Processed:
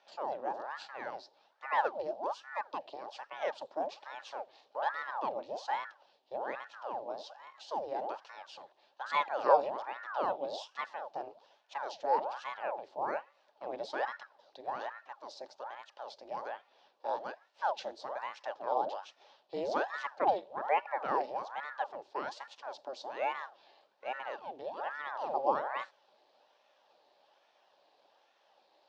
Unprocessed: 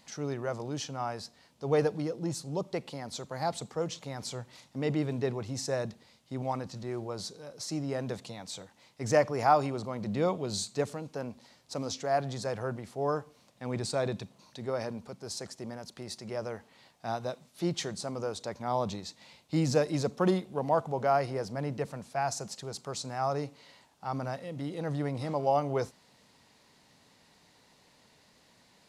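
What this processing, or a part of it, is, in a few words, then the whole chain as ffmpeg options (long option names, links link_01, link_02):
voice changer toy: -af "aeval=exprs='val(0)*sin(2*PI*880*n/s+880*0.85/1.2*sin(2*PI*1.2*n/s))':channel_layout=same,highpass=420,equalizer=frequency=580:width_type=q:width=4:gain=10,equalizer=frequency=830:width_type=q:width=4:gain=9,equalizer=frequency=1300:width_type=q:width=4:gain=-5,equalizer=frequency=2100:width_type=q:width=4:gain=-8,lowpass=frequency=4500:width=0.5412,lowpass=frequency=4500:width=1.3066,volume=-3.5dB"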